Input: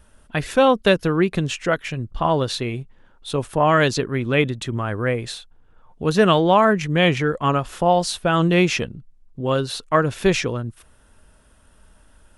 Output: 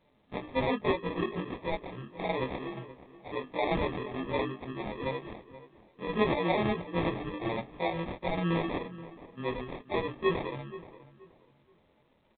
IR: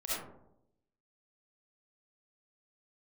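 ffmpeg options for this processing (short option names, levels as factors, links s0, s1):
-filter_complex "[0:a]afftfilt=real='re':imag='-im':win_size=2048:overlap=0.75,highpass=290,equalizer=f=990:t=o:w=2.7:g=-9,bandreject=f=50:t=h:w=6,bandreject=f=100:t=h:w=6,bandreject=f=150:t=h:w=6,bandreject=f=200:t=h:w=6,bandreject=f=250:t=h:w=6,bandreject=f=300:t=h:w=6,bandreject=f=350:t=h:w=6,bandreject=f=400:t=h:w=6,bandreject=f=450:t=h:w=6,asplit=2[s0][s1];[s1]acompressor=threshold=0.00891:ratio=12,volume=0.891[s2];[s0][s2]amix=inputs=2:normalize=0,flanger=delay=4.3:depth=7.8:regen=-15:speed=1.3:shape=triangular,adynamicsmooth=sensitivity=8:basefreq=2100,acrusher=samples=30:mix=1:aa=0.000001,asplit=2[s3][s4];[s4]adelay=477,lowpass=f=2000:p=1,volume=0.168,asplit=2[s5][s6];[s6]adelay=477,lowpass=f=2000:p=1,volume=0.27,asplit=2[s7][s8];[s8]adelay=477,lowpass=f=2000:p=1,volume=0.27[s9];[s3][s5][s7][s9]amix=inputs=4:normalize=0,volume=1.19" -ar 8000 -c:a pcm_alaw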